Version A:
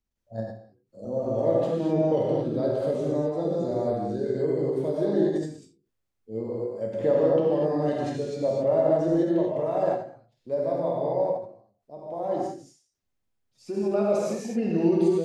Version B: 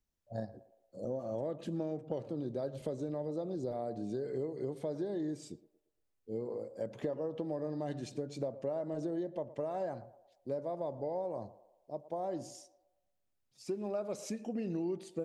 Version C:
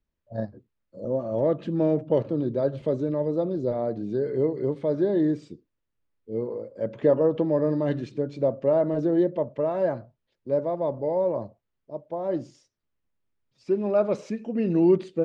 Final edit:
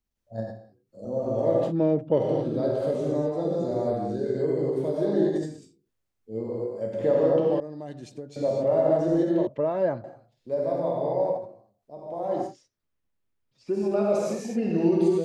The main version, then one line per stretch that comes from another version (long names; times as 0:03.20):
A
0:01.70–0:02.19: punch in from C, crossfade 0.06 s
0:07.60–0:08.36: punch in from B
0:09.47–0:10.04: punch in from C
0:12.49–0:13.72: punch in from C, crossfade 0.16 s